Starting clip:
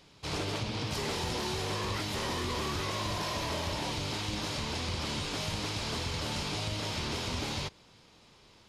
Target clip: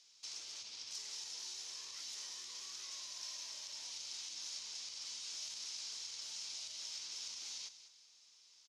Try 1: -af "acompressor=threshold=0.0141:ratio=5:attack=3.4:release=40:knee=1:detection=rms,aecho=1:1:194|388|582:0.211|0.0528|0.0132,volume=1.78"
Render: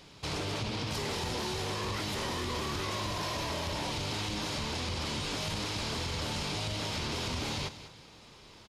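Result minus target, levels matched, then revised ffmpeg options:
8 kHz band -8.0 dB
-af "acompressor=threshold=0.0141:ratio=5:attack=3.4:release=40:knee=1:detection=rms,bandpass=f=6000:t=q:w=3.3:csg=0,aecho=1:1:194|388|582:0.211|0.0528|0.0132,volume=1.78"

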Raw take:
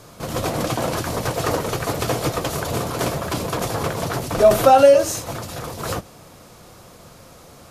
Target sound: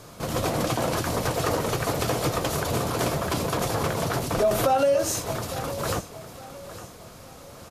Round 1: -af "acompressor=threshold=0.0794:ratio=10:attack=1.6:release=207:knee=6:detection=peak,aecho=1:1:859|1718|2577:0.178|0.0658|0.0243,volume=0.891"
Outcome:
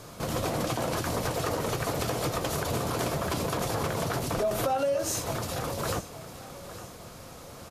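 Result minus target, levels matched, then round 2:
compression: peak gain reduction +6.5 dB
-af "acompressor=threshold=0.178:ratio=10:attack=1.6:release=207:knee=6:detection=peak,aecho=1:1:859|1718|2577:0.178|0.0658|0.0243,volume=0.891"

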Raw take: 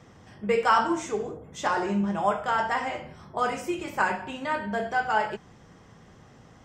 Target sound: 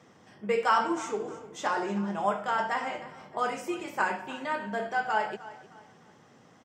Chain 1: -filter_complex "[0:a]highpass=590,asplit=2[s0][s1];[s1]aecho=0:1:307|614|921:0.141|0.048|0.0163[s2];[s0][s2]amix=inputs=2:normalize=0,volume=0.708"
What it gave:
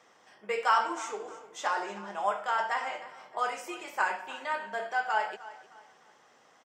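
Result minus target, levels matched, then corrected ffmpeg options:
250 Hz band -11.0 dB
-filter_complex "[0:a]highpass=180,asplit=2[s0][s1];[s1]aecho=0:1:307|614|921:0.141|0.048|0.0163[s2];[s0][s2]amix=inputs=2:normalize=0,volume=0.708"

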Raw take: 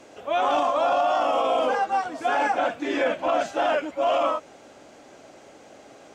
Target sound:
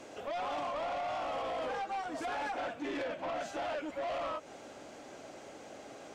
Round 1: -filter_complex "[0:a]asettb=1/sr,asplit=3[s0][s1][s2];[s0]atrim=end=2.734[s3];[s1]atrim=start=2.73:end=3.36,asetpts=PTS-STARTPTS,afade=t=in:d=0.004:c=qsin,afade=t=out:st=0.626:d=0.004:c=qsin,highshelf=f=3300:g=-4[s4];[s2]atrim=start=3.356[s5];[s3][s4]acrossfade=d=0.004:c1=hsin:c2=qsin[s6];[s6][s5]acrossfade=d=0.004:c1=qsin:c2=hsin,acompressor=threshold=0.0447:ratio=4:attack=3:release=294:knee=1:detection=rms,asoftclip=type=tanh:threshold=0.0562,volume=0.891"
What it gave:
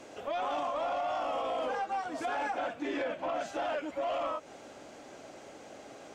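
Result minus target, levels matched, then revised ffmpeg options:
saturation: distortion -8 dB
-filter_complex "[0:a]asettb=1/sr,asplit=3[s0][s1][s2];[s0]atrim=end=2.734[s3];[s1]atrim=start=2.73:end=3.36,asetpts=PTS-STARTPTS,afade=t=in:d=0.004:c=qsin,afade=t=out:st=0.626:d=0.004:c=qsin,highshelf=f=3300:g=-4[s4];[s2]atrim=start=3.356[s5];[s3][s4]acrossfade=d=0.004:c1=hsin:c2=qsin[s6];[s6][s5]acrossfade=d=0.004:c1=qsin:c2=hsin,acompressor=threshold=0.0447:ratio=4:attack=3:release=294:knee=1:detection=rms,asoftclip=type=tanh:threshold=0.0251,volume=0.891"

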